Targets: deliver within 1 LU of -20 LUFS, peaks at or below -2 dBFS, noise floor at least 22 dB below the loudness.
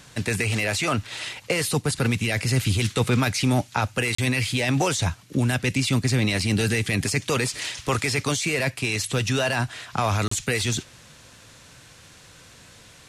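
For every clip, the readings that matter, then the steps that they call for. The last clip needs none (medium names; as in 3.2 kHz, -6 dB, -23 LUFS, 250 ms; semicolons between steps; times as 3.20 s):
dropouts 2; longest dropout 34 ms; loudness -24.0 LUFS; peak level -9.0 dBFS; loudness target -20.0 LUFS
-> interpolate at 4.15/10.28 s, 34 ms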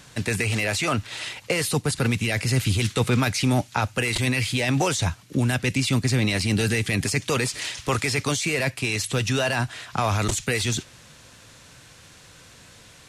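dropouts 0; loudness -24.0 LUFS; peak level -9.0 dBFS; loudness target -20.0 LUFS
-> trim +4 dB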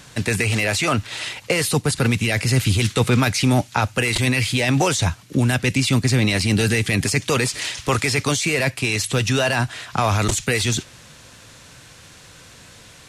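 loudness -20.0 LUFS; peak level -5.0 dBFS; noise floor -46 dBFS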